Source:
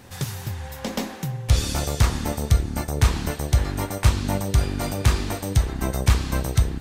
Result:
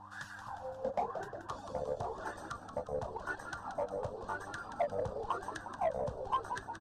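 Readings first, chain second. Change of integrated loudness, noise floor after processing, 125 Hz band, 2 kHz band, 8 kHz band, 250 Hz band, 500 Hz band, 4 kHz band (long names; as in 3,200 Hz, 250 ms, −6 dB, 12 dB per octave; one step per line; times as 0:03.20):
−15.5 dB, −51 dBFS, −28.5 dB, −11.0 dB, −25.5 dB, −21.5 dB, −5.5 dB, −23.5 dB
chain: sub-octave generator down 2 octaves, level +2 dB
reverb reduction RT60 0.6 s
Chebyshev low-pass filter 9,600 Hz, order 2
notch filter 1,300 Hz, Q 13
downward compressor 6 to 1, threshold −19 dBFS, peak gain reduction 11 dB
phaser with its sweep stopped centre 910 Hz, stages 4
LFO wah 0.95 Hz 460–1,700 Hz, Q 8.5
on a send: echo with shifted repeats 178 ms, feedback 58%, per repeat −65 Hz, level −9 dB
on the sum: soft clipping −37 dBFS, distortion −16 dB
hum with harmonics 100 Hz, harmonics 3, −73 dBFS −4 dB per octave
every ending faded ahead of time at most 300 dB per second
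level +13 dB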